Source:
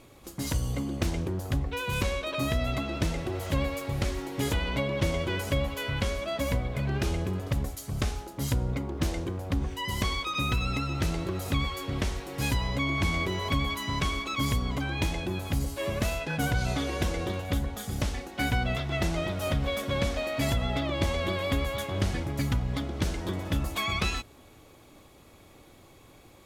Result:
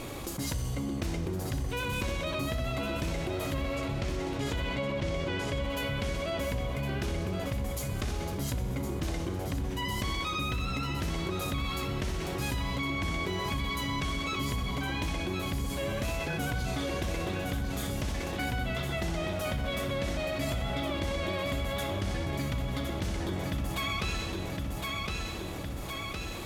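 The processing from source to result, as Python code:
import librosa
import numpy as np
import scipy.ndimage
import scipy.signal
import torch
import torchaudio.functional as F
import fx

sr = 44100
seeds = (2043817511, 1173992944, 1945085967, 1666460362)

y = fx.lowpass(x, sr, hz=6800.0, slope=12, at=(3.54, 5.7))
y = fx.echo_feedback(y, sr, ms=1062, feedback_pct=35, wet_db=-8.0)
y = fx.rev_schroeder(y, sr, rt60_s=1.2, comb_ms=27, drr_db=8.5)
y = fx.env_flatten(y, sr, amount_pct=70)
y = y * librosa.db_to_amplitude(-8.0)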